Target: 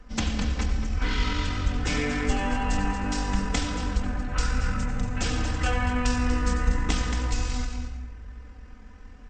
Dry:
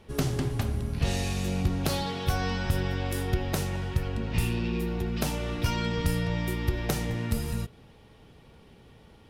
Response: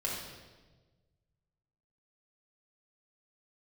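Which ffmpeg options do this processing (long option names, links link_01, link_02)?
-filter_complex "[0:a]aecho=1:1:2.1:0.62,aecho=1:1:232:0.355,asplit=2[link_01][link_02];[1:a]atrim=start_sample=2205,adelay=84[link_03];[link_02][link_03]afir=irnorm=-1:irlink=0,volume=-9.5dB[link_04];[link_01][link_04]amix=inputs=2:normalize=0,acrossover=split=500[link_05][link_06];[link_06]acompressor=threshold=-25dB:ratio=2[link_07];[link_05][link_07]amix=inputs=2:normalize=0,highshelf=frequency=2200:gain=4.5,bandreject=frequency=50:width_type=h:width=6,bandreject=frequency=100:width_type=h:width=6,bandreject=frequency=150:width_type=h:width=6,bandreject=frequency=200:width_type=h:width=6,bandreject=frequency=250:width_type=h:width=6,bandreject=frequency=300:width_type=h:width=6,bandreject=frequency=350:width_type=h:width=6,bandreject=frequency=400:width_type=h:width=6,bandreject=frequency=450:width_type=h:width=6,acrossover=split=110|3000[link_08][link_09][link_10];[link_08]acompressor=mode=upward:threshold=-35dB:ratio=2.5[link_11];[link_11][link_09][link_10]amix=inputs=3:normalize=0,asetrate=23361,aresample=44100,atempo=1.88775"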